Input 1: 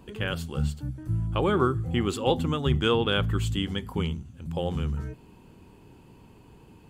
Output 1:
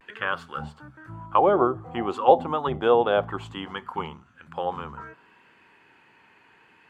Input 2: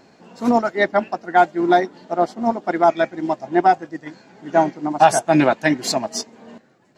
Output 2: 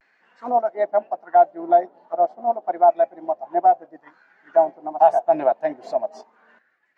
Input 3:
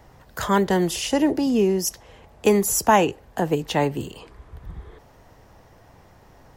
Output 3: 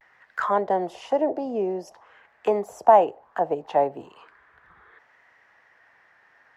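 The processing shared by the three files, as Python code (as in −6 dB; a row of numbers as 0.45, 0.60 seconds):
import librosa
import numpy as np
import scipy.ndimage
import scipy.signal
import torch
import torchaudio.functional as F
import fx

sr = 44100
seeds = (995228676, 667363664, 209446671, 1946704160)

y = fx.auto_wah(x, sr, base_hz=670.0, top_hz=1900.0, q=3.8, full_db=-20.0, direction='down')
y = fx.vibrato(y, sr, rate_hz=0.44, depth_cents=39.0)
y = y * 10.0 ** (-3 / 20.0) / np.max(np.abs(y))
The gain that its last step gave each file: +16.0, +2.0, +7.0 decibels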